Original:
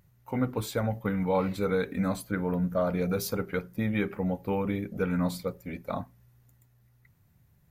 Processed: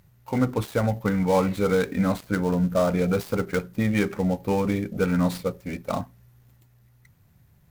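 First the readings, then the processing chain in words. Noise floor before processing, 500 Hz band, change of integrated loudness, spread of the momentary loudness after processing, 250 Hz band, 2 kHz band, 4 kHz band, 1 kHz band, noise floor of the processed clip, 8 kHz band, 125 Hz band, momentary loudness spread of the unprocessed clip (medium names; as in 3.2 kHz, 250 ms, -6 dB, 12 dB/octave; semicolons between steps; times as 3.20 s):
-64 dBFS, +5.5 dB, +5.5 dB, 8 LU, +5.5 dB, +5.0 dB, +4.0 dB, +5.5 dB, -59 dBFS, +2.5 dB, +5.5 dB, 8 LU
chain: dead-time distortion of 0.1 ms; trim +5.5 dB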